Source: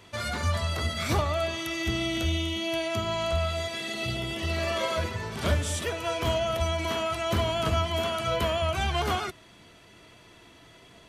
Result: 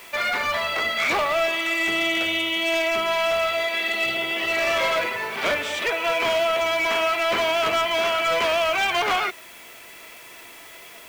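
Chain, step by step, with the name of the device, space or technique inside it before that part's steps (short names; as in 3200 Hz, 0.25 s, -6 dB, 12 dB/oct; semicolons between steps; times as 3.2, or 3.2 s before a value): drive-through speaker (BPF 480–3400 Hz; bell 2300 Hz +8 dB 0.49 oct; hard clip -26.5 dBFS, distortion -14 dB; white noise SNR 24 dB); gain +8.5 dB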